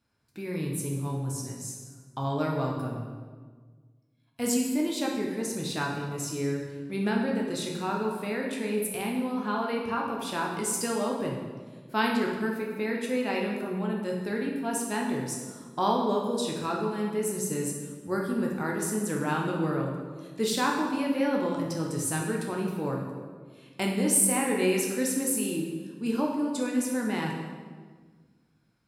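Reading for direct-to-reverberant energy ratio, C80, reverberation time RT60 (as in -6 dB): -1.5 dB, 5.0 dB, 1.6 s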